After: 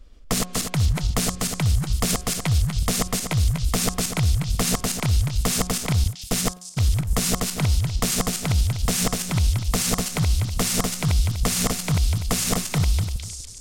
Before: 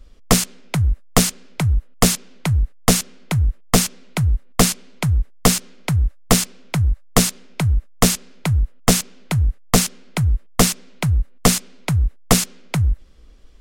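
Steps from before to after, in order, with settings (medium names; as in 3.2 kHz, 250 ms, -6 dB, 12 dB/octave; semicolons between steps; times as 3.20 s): backward echo that repeats 123 ms, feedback 47%, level -3 dB; 6.04–6.80 s: gate -15 dBFS, range -38 dB; peak limiter -10.5 dBFS, peak gain reduction 8.5 dB; de-hum 180.7 Hz, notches 9; on a send: repeats whose band climbs or falls 458 ms, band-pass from 4.1 kHz, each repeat 0.7 oct, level -6 dB; on the sum: trim -2.5 dB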